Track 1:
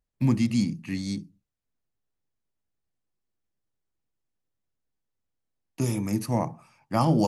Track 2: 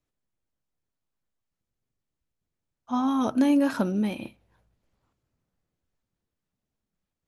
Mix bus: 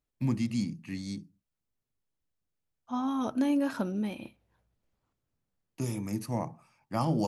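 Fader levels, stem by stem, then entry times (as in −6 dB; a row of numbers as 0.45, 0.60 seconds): −6.5, −6.0 decibels; 0.00, 0.00 seconds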